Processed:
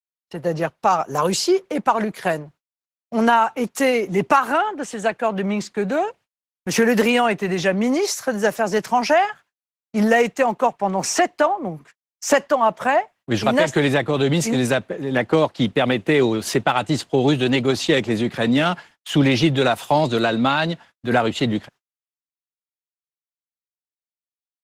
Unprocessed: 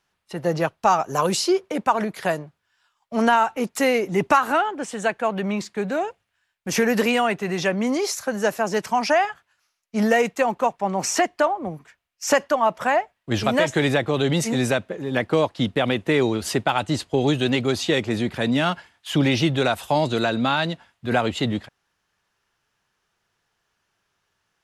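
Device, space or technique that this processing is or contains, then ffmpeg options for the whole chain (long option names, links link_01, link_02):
video call: -af "highpass=frequency=110:width=0.5412,highpass=frequency=110:width=1.3066,dynaudnorm=framelen=120:gausssize=17:maxgain=4dB,agate=range=-43dB:threshold=-44dB:ratio=16:detection=peak" -ar 48000 -c:a libopus -b:a 16k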